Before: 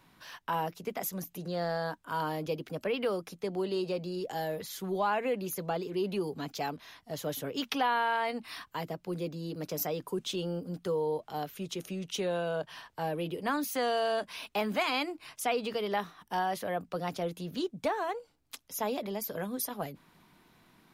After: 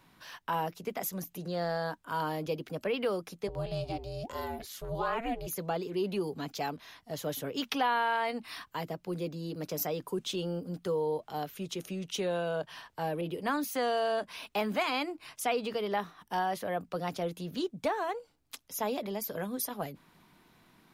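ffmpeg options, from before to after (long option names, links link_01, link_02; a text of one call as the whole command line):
ffmpeg -i in.wav -filter_complex "[0:a]asplit=3[link_01][link_02][link_03];[link_01]afade=type=out:start_time=3.47:duration=0.02[link_04];[link_02]aeval=exprs='val(0)*sin(2*PI*230*n/s)':channel_layout=same,afade=type=in:start_time=3.47:duration=0.02,afade=type=out:start_time=5.46:duration=0.02[link_05];[link_03]afade=type=in:start_time=5.46:duration=0.02[link_06];[link_04][link_05][link_06]amix=inputs=3:normalize=0,asettb=1/sr,asplit=3[link_07][link_08][link_09];[link_07]atrim=end=13.214[link_10];[link_08]atrim=start=13.21:end=16.72,asetpts=PTS-STARTPTS,afade=type=in:duration=0.004:curve=qsin,afade=type=out:start_time=3.506:duration=0.004:curve=qsin,adynamicequalizer=threshold=0.00708:dfrequency=1900:dqfactor=0.7:tfrequency=1900:tqfactor=0.7:attack=5:release=100:ratio=0.375:range=2:mode=cutabove:tftype=highshelf[link_11];[link_09]atrim=start=16.716[link_12];[link_10][link_11]acrossfade=duration=0.004:curve1=hsin:curve2=qsin[link_13];[link_13][link_12]acrossfade=duration=0.004:curve1=qsin:curve2=hsin" out.wav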